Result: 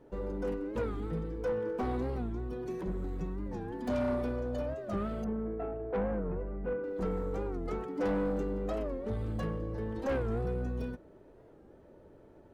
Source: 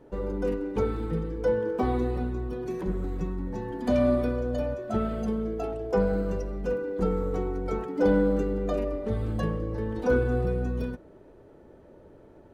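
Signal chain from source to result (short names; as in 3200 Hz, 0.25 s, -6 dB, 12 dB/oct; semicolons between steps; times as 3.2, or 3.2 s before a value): tracing distortion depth 0.052 ms; 5.24–6.84 LPF 2100 Hz 24 dB/oct; soft clip -22 dBFS, distortion -13 dB; record warp 45 rpm, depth 160 cents; gain -4.5 dB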